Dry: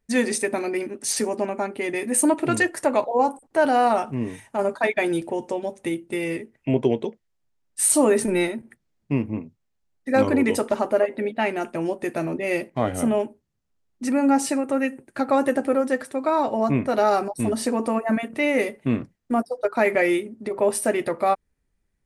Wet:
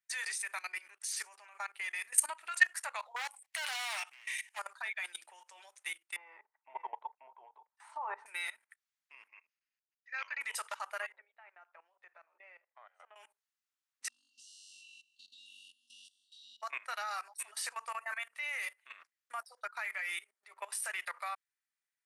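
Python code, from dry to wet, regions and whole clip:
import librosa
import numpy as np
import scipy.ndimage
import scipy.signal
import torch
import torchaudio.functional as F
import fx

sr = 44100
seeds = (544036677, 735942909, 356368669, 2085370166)

y = fx.chain(x, sr, fx.high_shelf_res(hz=1700.0, db=7.0, q=3.0),
    fx.overload_stage(gain_db=22.5), at=(3.16, 4.59))
y = fx.chain(y, sr, fx.lowpass_res(hz=890.0, q=6.0),
    fx.echo_single(ms=534, db=-7.0), at=(6.16, 8.26))
y = fx.chain(y, sr, fx.cheby_ripple(hz=6700.0, ripple_db=9),
    fx.peak_eq(hz=2700.0, db=9.5, octaves=0.38), at=(9.28, 10.41))
y = fx.chain(y, sr, fx.ladder_bandpass(hz=630.0, resonance_pct=25),
    fx.band_squash(depth_pct=100), at=(11.12, 13.16))
y = fx.chain(y, sr, fx.brickwall_bandstop(low_hz=260.0, high_hz=2700.0),
    fx.spacing_loss(db_at_10k=26),
    fx.room_flutter(wall_m=3.6, rt60_s=1.2), at=(14.08, 16.62))
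y = scipy.signal.sosfilt(scipy.signal.butter(4, 1200.0, 'highpass', fs=sr, output='sos'), y)
y = fx.level_steps(y, sr, step_db=19)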